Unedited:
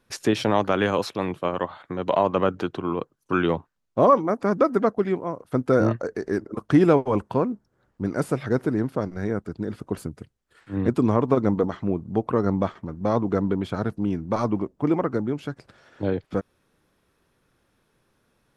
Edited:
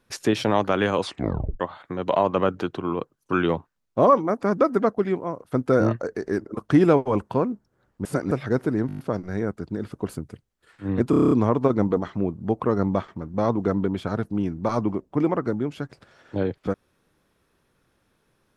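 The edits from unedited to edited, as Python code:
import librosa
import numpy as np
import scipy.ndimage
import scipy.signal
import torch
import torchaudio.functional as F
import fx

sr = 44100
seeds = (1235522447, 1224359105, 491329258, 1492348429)

y = fx.edit(x, sr, fx.tape_stop(start_s=0.99, length_s=0.61),
    fx.reverse_span(start_s=8.05, length_s=0.26),
    fx.stutter(start_s=8.87, slice_s=0.02, count=7),
    fx.stutter(start_s=10.98, slice_s=0.03, count=8), tone=tone)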